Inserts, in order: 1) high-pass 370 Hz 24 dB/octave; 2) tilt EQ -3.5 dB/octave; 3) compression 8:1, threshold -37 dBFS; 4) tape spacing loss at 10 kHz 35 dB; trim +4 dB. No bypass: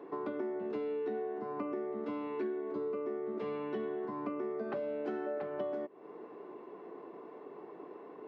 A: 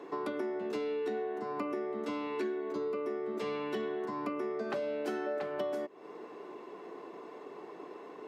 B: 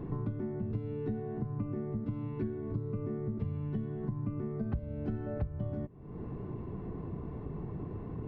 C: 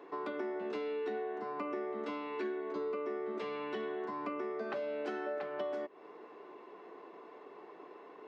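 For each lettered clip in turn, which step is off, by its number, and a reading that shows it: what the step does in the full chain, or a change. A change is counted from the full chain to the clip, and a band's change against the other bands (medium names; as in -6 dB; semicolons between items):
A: 4, 2 kHz band +5.0 dB; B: 1, 125 Hz band +29.5 dB; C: 2, 2 kHz band +7.5 dB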